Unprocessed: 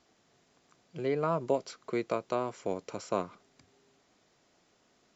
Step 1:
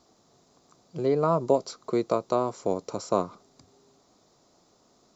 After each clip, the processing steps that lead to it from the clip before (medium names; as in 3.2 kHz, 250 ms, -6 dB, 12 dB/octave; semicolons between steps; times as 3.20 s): high-order bell 2.2 kHz -10.5 dB 1.3 oct; trim +6.5 dB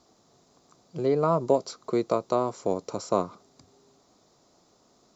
Chebyshev shaper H 5 -44 dB, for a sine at -9 dBFS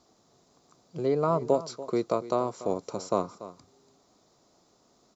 delay 288 ms -15.5 dB; trim -2 dB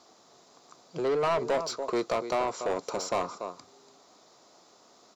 overdrive pedal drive 24 dB, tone 5.3 kHz, clips at -10.5 dBFS; trim -8 dB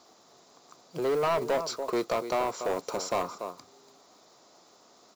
block-companded coder 5-bit